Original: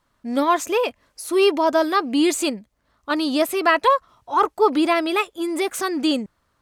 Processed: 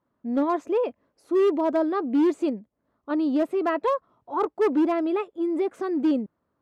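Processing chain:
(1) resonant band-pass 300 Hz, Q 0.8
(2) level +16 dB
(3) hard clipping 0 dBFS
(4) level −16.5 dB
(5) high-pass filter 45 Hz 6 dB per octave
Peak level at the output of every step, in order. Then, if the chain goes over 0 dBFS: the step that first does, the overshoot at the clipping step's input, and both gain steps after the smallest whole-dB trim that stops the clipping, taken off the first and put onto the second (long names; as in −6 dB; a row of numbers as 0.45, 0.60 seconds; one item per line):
−10.5, +5.5, 0.0, −16.5, −15.5 dBFS
step 2, 5.5 dB
step 2 +10 dB, step 4 −10.5 dB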